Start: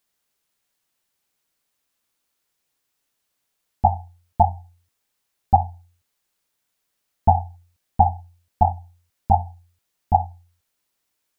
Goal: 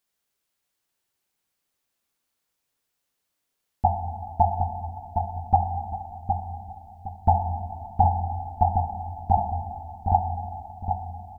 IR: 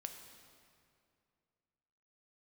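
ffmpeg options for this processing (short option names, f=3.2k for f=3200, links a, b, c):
-filter_complex "[0:a]asplit=2[a][b];[b]adelay=763,lowpass=f=850:p=1,volume=-4dB,asplit=2[c][d];[d]adelay=763,lowpass=f=850:p=1,volume=0.37,asplit=2[e][f];[f]adelay=763,lowpass=f=850:p=1,volume=0.37,asplit=2[g][h];[h]adelay=763,lowpass=f=850:p=1,volume=0.37,asplit=2[i][j];[j]adelay=763,lowpass=f=850:p=1,volume=0.37[k];[a][c][e][g][i][k]amix=inputs=6:normalize=0[l];[1:a]atrim=start_sample=2205[m];[l][m]afir=irnorm=-1:irlink=0"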